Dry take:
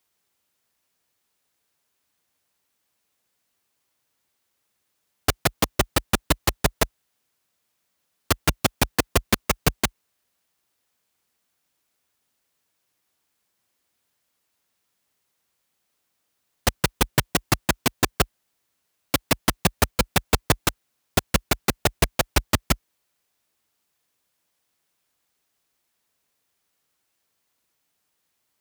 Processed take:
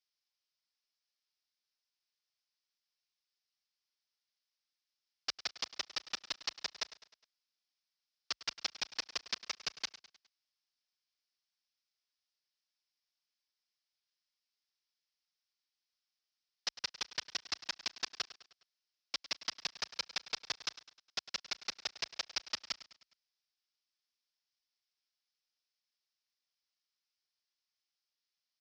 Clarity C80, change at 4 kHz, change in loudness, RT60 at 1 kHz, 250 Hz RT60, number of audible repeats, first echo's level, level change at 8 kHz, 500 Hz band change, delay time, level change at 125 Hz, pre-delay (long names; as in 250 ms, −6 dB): no reverb audible, −9.5 dB, −15.5 dB, no reverb audible, no reverb audible, 4, −16.0 dB, −17.5 dB, −27.5 dB, 103 ms, −40.0 dB, no reverb audible